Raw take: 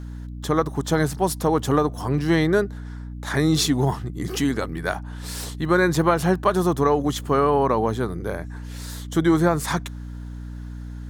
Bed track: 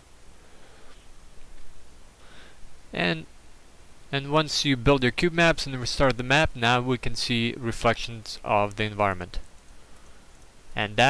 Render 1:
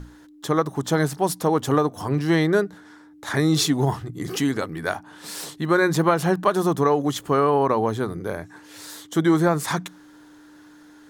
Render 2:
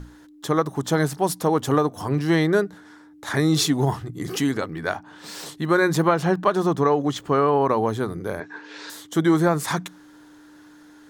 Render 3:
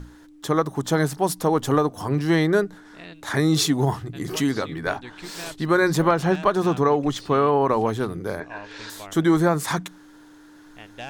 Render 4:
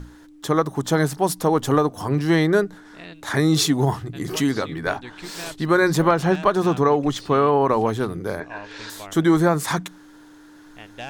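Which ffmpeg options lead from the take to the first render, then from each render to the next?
-af "bandreject=f=60:t=h:w=6,bandreject=f=120:t=h:w=6,bandreject=f=180:t=h:w=6,bandreject=f=240:t=h:w=6"
-filter_complex "[0:a]asettb=1/sr,asplit=3[a][b][c];[a]atrim=end=4.574[d];[b]atrim=start=4.57:end=5.46,asetpts=PTS-STARTPTS,afade=t=in:d=0.004:c=qsin,afade=t=out:st=0.886:d=0.004:c=qsin,equalizer=f=11k:t=o:w=0.65:g=-13[e];[c]atrim=start=5.456[f];[d][e]acrossfade=d=0.004:c1=hsin:c2=qsin[g];[g][f]acrossfade=d=0.004:c1=qsin:c2=hsin,asettb=1/sr,asplit=3[h][i][j];[h]atrim=end=6.074[k];[i]atrim=start=6.07:end=7.66,asetpts=PTS-STARTPTS,afade=t=in:d=0.004:c=qsin,afade=t=out:st=1.586:d=0.004:c=qsin,equalizer=f=12k:t=o:w=0.93:g=-12.5[l];[j]atrim=start=7.656[m];[k][l]acrossfade=d=0.004:c1=hsin:c2=qsin[n];[n][m]acrossfade=d=0.004:c1=qsin:c2=hsin,asettb=1/sr,asplit=3[o][p][q];[o]atrim=end=8.404[r];[p]atrim=start=8.4:end=8.9,asetpts=PTS-STARTPTS,afade=t=in:d=0.004:c=qsin,afade=t=out:st=0.496:d=0.004:c=qsin,highpass=210,equalizer=f=270:t=q:w=4:g=4,equalizer=f=430:t=q:w=4:g=9,equalizer=f=960:t=q:w=4:g=6,equalizer=f=1.6k:t=q:w=4:g=10,equalizer=f=2.5k:t=q:w=4:g=6,equalizer=f=3.8k:t=q:w=4:g=4,lowpass=f=5.7k:w=0.5412,lowpass=f=5.7k:w=1.3066[s];[q]atrim=start=8.896[t];[r][s]acrossfade=d=0.004:c1=hsin:c2=qsin[u];[u][t]acrossfade=d=0.004:c1=qsin:c2=hsin"
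-filter_complex "[1:a]volume=-17.5dB[a];[0:a][a]amix=inputs=2:normalize=0"
-af "volume=1.5dB"

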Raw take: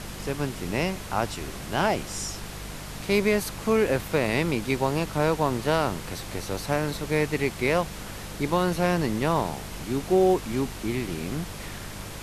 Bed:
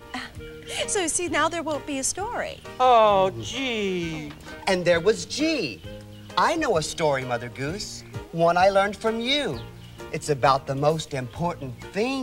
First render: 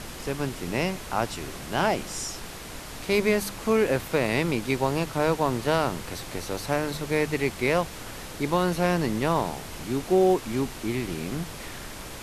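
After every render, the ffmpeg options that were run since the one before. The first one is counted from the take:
-af "bandreject=f=50:t=h:w=4,bandreject=f=100:t=h:w=4,bandreject=f=150:t=h:w=4,bandreject=f=200:t=h:w=4"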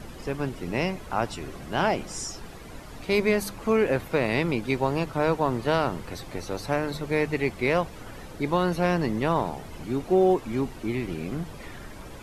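-af "afftdn=nr=11:nf=-40"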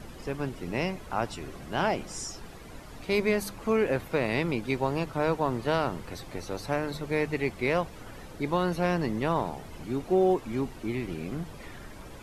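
-af "volume=-3dB"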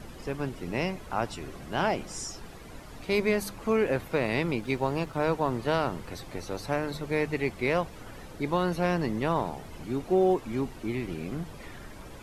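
-filter_complex "[0:a]asettb=1/sr,asplit=3[a][b][c];[a]atrim=end=4.564[d];[b]atrim=start=4.56:end=5.29,asetpts=PTS-STARTPTS,afade=t=in:d=0.004:c=qsin,afade=t=out:st=0.726:d=0.004:c=qsin,aeval=exprs='sgn(val(0))*max(abs(val(0))-0.0015,0)':c=same[e];[c]atrim=start=5.286[f];[d][e]acrossfade=d=0.004:c1=hsin:c2=qsin[g];[g][f]acrossfade=d=0.004:c1=qsin:c2=hsin"

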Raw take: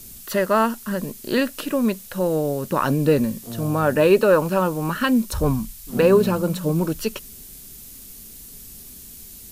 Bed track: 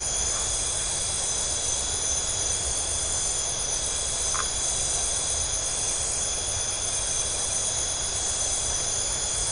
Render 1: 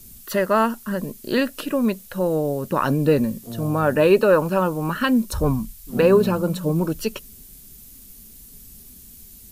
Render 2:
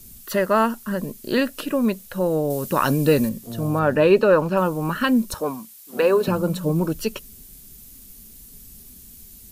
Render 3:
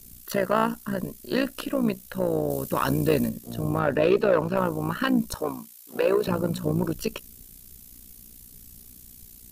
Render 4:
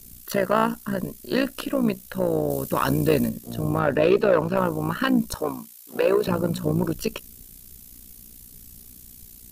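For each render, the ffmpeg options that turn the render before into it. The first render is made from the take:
-af "afftdn=nr=6:nf=-42"
-filter_complex "[0:a]asettb=1/sr,asplit=3[a][b][c];[a]atrim=end=2.504[d];[b]atrim=start=2.5:end=3.29,asetpts=PTS-STARTPTS,afade=t=in:d=0.004:c=qsin,afade=t=out:st=0.786:d=0.004:c=qsin,highshelf=f=2.6k:g=9[e];[c]atrim=start=3.286[f];[d][e]acrossfade=d=0.004:c1=hsin:c2=qsin[g];[g][f]acrossfade=d=0.004:c1=qsin:c2=hsin,asettb=1/sr,asplit=3[h][i][j];[h]atrim=end=3.794[k];[i]atrim=start=3.79:end=4.57,asetpts=PTS-STARTPTS,afade=t=in:d=0.004:c=qsin,afade=t=out:st=0.776:d=0.004:c=qsin,acrossover=split=6200[l][m];[m]acompressor=threshold=-52dB:ratio=4:attack=1:release=60[n];[l][n]amix=inputs=2:normalize=0[o];[j]atrim=start=4.566[p];[k][o]acrossfade=d=0.004:c1=hsin:c2=qsin[q];[q][p]acrossfade=d=0.004:c1=qsin:c2=hsin,asettb=1/sr,asplit=3[r][s][t];[r]atrim=end=5.344[u];[s]atrim=start=5.34:end=6.28,asetpts=PTS-STARTPTS,afade=t=in:d=0.004:c=qsin,afade=t=out:st=0.936:d=0.004:c=qsin,highpass=400[v];[t]atrim=start=6.276[w];[u][v]acrossfade=d=0.004:c1=hsin:c2=qsin[x];[x][w]acrossfade=d=0.004:c1=qsin:c2=hsin"
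-af "asoftclip=type=tanh:threshold=-10dB,tremolo=f=60:d=0.75"
-af "volume=2dB"

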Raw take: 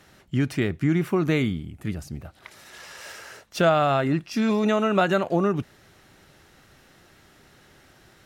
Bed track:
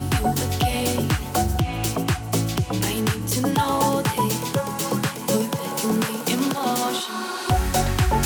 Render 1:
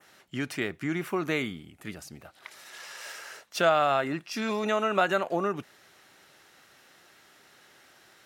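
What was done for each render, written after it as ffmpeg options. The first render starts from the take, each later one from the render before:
-af "adynamicequalizer=threshold=0.00631:dfrequency=4300:dqfactor=1:tfrequency=4300:tqfactor=1:attack=5:release=100:ratio=0.375:range=2:mode=cutabove:tftype=bell,highpass=f=680:p=1"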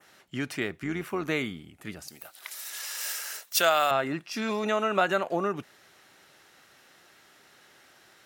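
-filter_complex "[0:a]asettb=1/sr,asplit=3[a][b][c];[a]atrim=end=0.814[d];[b]atrim=start=0.81:end=1.28,asetpts=PTS-STARTPTS,afade=t=in:d=0.004:c=qsin,afade=t=out:st=0.466:d=0.004:c=qsin,tremolo=f=96:d=0.4[e];[c]atrim=start=1.276[f];[d][e]acrossfade=d=0.004:c1=hsin:c2=qsin[g];[g][f]acrossfade=d=0.004:c1=qsin:c2=hsin,asettb=1/sr,asplit=3[h][i][j];[h]atrim=end=2.084[k];[i]atrim=start=2.08:end=3.91,asetpts=PTS-STARTPTS,afade=t=in:d=0.004:c=qsin,afade=t=out:st=1.826:d=0.004:c=qsin,aemphasis=mode=production:type=riaa[l];[j]atrim=start=3.906[m];[k][l]acrossfade=d=0.004:c1=hsin:c2=qsin[n];[n][m]acrossfade=d=0.004:c1=qsin:c2=hsin"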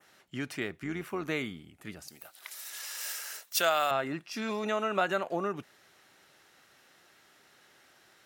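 -af "volume=-4dB"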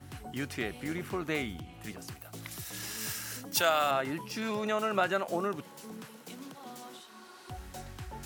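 -filter_complex "[1:a]volume=-23.5dB[a];[0:a][a]amix=inputs=2:normalize=0"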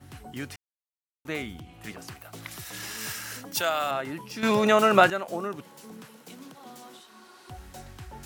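-filter_complex "[0:a]asettb=1/sr,asplit=3[a][b][c];[a]atrim=end=1.834[d];[b]atrim=start=1.83:end=3.53,asetpts=PTS-STARTPTS,afade=t=in:d=0.004:c=qsin,afade=t=out:st=1.696:d=0.004:c=qsin,equalizer=f=1.4k:w=0.36:g=5.5[e];[c]atrim=start=3.526[f];[d][e]acrossfade=d=0.004:c1=hsin:c2=qsin[g];[g][f]acrossfade=d=0.004:c1=qsin:c2=hsin,asplit=5[h][i][j][k][l];[h]atrim=end=0.56,asetpts=PTS-STARTPTS,afade=t=out:st=0.556:d=0.004:c=hsin[m];[i]atrim=start=0.56:end=1.25,asetpts=PTS-STARTPTS,volume=0[n];[j]atrim=start=1.25:end=4.432,asetpts=PTS-STARTPTS,afade=t=in:d=0.004:c=hsin[o];[k]atrim=start=4.428:end=5.102,asetpts=PTS-STARTPTS,volume=11dB[p];[l]atrim=start=5.098[q];[m][n][o]concat=n=3:v=0:a=1[r];[r][p]acrossfade=d=0.004:c1=hsin:c2=hsin[s];[s][q]acrossfade=d=0.004:c1=hsin:c2=hsin"

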